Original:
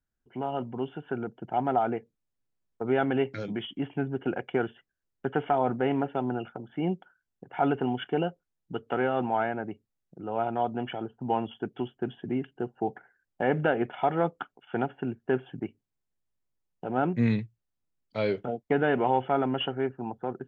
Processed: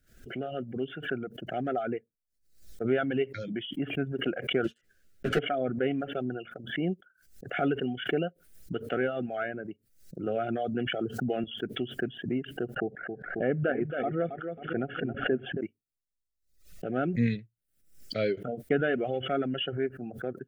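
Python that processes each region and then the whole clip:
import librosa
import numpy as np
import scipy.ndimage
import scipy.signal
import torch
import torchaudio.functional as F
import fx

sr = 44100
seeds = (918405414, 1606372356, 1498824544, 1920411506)

y = fx.chain(x, sr, fx.leveller(passes=3),
    fx.ensemble(), at=(4.64, 5.39))
y = fx.chain(y, sr, fx.highpass(hz=89.0, slope=24),
    fx.env_flatten(amount_pct=50), at=(10.26, 11.44))
y = fx.chain(y, sr, fx.air_absorb(metres=480.0),
    fx.echo_feedback(ms=271, feedback_pct=26, wet_db=-6),
    fx.pre_swell(db_per_s=72.0), at=(12.76, 15.61))
y = scipy.signal.sosfilt(scipy.signal.cheby1(2, 1.0, [630.0, 1400.0], 'bandstop', fs=sr, output='sos'), y)
y = fx.dereverb_blind(y, sr, rt60_s=1.1)
y = fx.pre_swell(y, sr, db_per_s=100.0)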